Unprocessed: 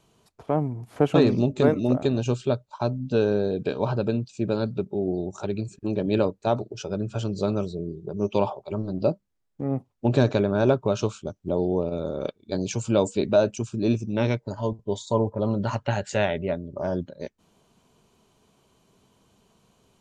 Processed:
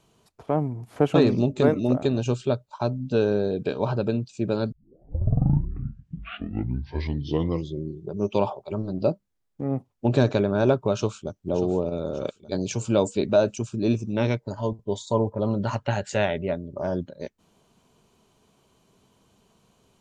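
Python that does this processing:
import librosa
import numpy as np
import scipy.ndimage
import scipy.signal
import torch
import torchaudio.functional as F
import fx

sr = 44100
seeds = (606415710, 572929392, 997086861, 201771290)

y = fx.echo_throw(x, sr, start_s=10.93, length_s=0.46, ms=590, feedback_pct=50, wet_db=-11.5)
y = fx.edit(y, sr, fx.tape_start(start_s=4.72, length_s=3.41), tone=tone)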